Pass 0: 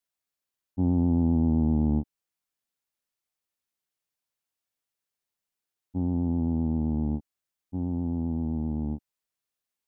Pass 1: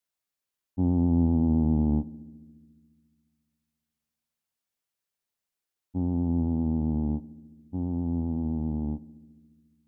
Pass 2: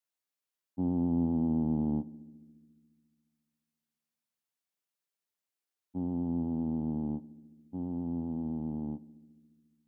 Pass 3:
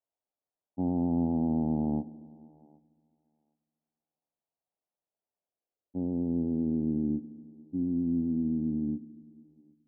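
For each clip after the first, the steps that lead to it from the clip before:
filtered feedback delay 70 ms, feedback 82%, low-pass 970 Hz, level -20 dB
high-pass 150 Hz 12 dB/octave; trim -4 dB
low-pass sweep 720 Hz -> 300 Hz, 5.33–7.35 s; thinning echo 766 ms, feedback 15%, high-pass 490 Hz, level -22 dB

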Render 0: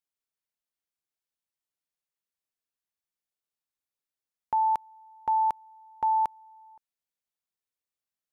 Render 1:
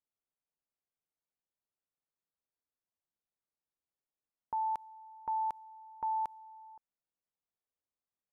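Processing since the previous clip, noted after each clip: level-controlled noise filter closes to 1.1 kHz; peak limiter -29.5 dBFS, peak gain reduction 9 dB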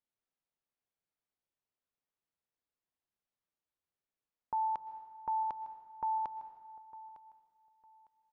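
distance through air 160 m; feedback delay 905 ms, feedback 23%, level -17 dB; plate-style reverb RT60 1.5 s, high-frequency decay 0.8×, pre-delay 105 ms, DRR 11.5 dB; trim +1.5 dB

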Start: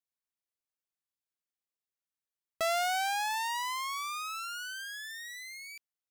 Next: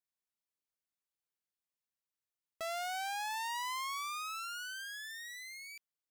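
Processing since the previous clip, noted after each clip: peak limiter -30.5 dBFS, peak gain reduction 6.5 dB; trim -3 dB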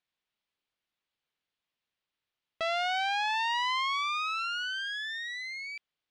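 resonant low-pass 3.4 kHz, resonance Q 1.6; trim +7.5 dB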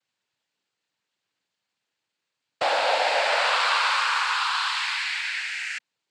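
noise-vocoded speech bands 8; trim +8 dB

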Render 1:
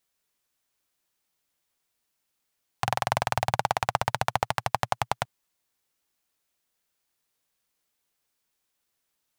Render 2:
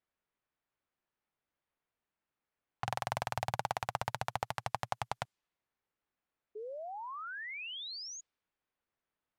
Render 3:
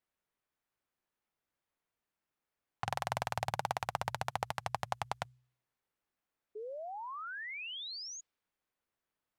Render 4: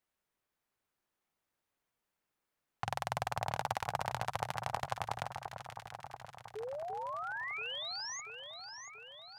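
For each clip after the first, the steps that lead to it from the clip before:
peak limiter -11.5 dBFS, peak gain reduction 6.5 dB; painted sound rise, 6.55–8.21 s, 410–6900 Hz -38 dBFS; level-controlled noise filter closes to 2 kHz, open at -31 dBFS; trim -4.5 dB
de-hum 62.8 Hz, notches 2
in parallel at +0.5 dB: peak limiter -22.5 dBFS, peak gain reduction 7 dB; on the sum: echo whose repeats swap between lows and highs 342 ms, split 1.4 kHz, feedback 77%, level -6 dB; trim -4.5 dB

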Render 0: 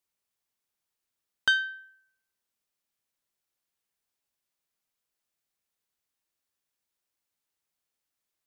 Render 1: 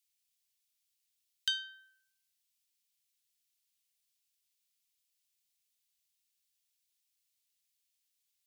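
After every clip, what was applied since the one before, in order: Chebyshev band-stop 120–2800 Hz, order 2; tilt shelf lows -5.5 dB, about 1.4 kHz; compression 1.5:1, threshold -41 dBFS, peak gain reduction 7.5 dB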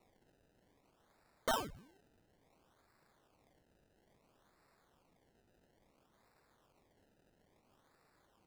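treble shelf 5.8 kHz +9.5 dB; peak limiter -20 dBFS, peak gain reduction 9.5 dB; decimation with a swept rate 27×, swing 100% 0.59 Hz; trim +1 dB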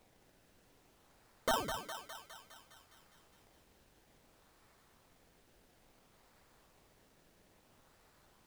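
added noise pink -73 dBFS; on a send: thinning echo 205 ms, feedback 67%, high-pass 580 Hz, level -6.5 dB; on the sum: trim +2 dB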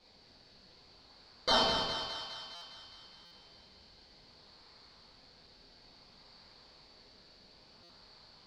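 resonant low-pass 4.5 kHz, resonance Q 12; reverberation RT60 1.1 s, pre-delay 5 ms, DRR -7 dB; buffer glitch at 2.55/3.25/7.83 s, samples 256, times 10; trim -3.5 dB

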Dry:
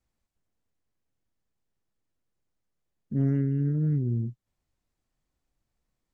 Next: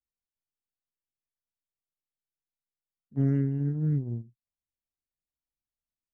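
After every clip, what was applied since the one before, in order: gate -25 dBFS, range -21 dB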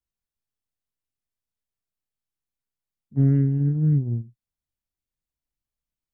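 bass shelf 240 Hz +10 dB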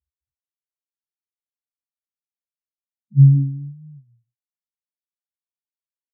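spectral contrast enhancement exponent 3.9; high-pass sweep 79 Hz -> 960 Hz, 2.89–4.18 s; doubling 15 ms -3.5 dB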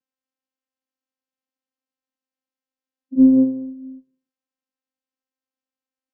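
vocoder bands 8, saw 262 Hz

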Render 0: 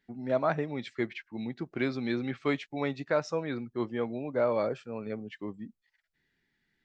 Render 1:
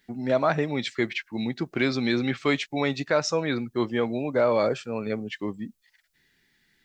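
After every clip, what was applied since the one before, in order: treble shelf 3.2 kHz +11 dB; in parallel at +2 dB: peak limiter -22 dBFS, peak gain reduction 8.5 dB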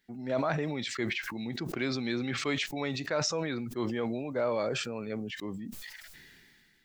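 decay stretcher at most 25 dB/s; trim -8.5 dB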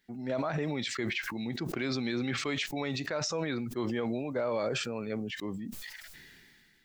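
peak limiter -23.5 dBFS, peak gain reduction 7.5 dB; trim +1 dB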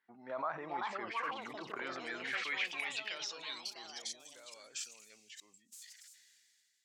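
ever faster or slower copies 493 ms, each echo +5 st, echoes 2; band-pass sweep 1.1 kHz -> 7.3 kHz, 1.67–4.43 s; trim +2 dB

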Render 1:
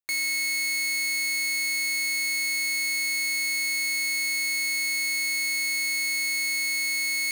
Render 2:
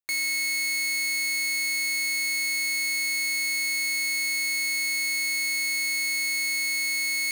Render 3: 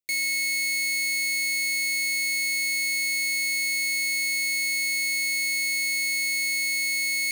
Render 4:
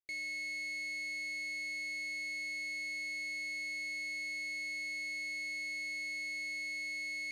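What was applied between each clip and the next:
no audible change
elliptic band-stop 640–2000 Hz, stop band 80 dB; trim +1 dB
tape spacing loss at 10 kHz 20 dB; trim -8 dB

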